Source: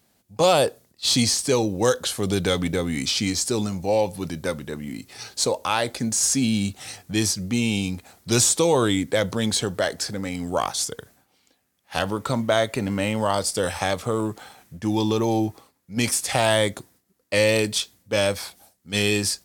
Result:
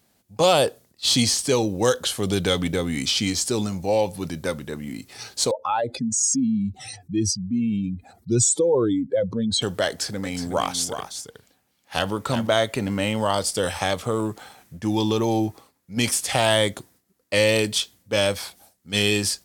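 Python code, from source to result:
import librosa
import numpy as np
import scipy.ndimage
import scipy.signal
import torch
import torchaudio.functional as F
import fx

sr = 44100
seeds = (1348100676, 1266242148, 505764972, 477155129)

y = fx.spec_expand(x, sr, power=2.2, at=(5.51, 9.62))
y = fx.echo_single(y, sr, ms=366, db=-8.5, at=(10.23, 12.47), fade=0.02)
y = fx.dynamic_eq(y, sr, hz=3100.0, q=6.0, threshold_db=-45.0, ratio=4.0, max_db=5)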